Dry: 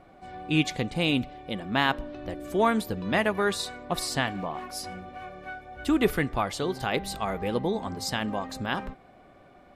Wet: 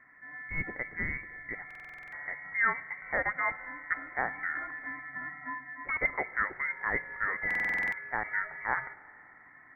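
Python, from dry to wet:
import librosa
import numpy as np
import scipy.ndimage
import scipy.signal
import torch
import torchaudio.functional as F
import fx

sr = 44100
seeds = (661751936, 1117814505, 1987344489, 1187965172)

y = scipy.signal.sosfilt(scipy.signal.butter(4, 400.0, 'highpass', fs=sr, output='sos'), x)
y = fx.rider(y, sr, range_db=3, speed_s=0.5)
y = fx.quant_companded(y, sr, bits=6)
y = fx.rev_spring(y, sr, rt60_s=2.5, pass_ms=(32,), chirp_ms=35, drr_db=18.0)
y = fx.freq_invert(y, sr, carrier_hz=2500)
y = fx.buffer_glitch(y, sr, at_s=(1.66, 7.46), block=2048, repeats=9)
y = y * 10.0 ** (-2.0 / 20.0)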